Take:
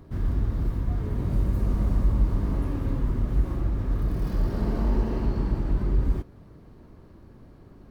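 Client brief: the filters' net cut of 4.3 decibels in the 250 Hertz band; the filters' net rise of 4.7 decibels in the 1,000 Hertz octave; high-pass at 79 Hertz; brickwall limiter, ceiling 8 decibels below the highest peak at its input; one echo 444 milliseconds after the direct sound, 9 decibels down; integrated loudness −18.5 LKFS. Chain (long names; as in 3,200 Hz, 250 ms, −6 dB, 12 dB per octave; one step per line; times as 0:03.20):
high-pass filter 79 Hz
parametric band 250 Hz −6 dB
parametric band 1,000 Hz +6 dB
brickwall limiter −26 dBFS
single-tap delay 444 ms −9 dB
level +17 dB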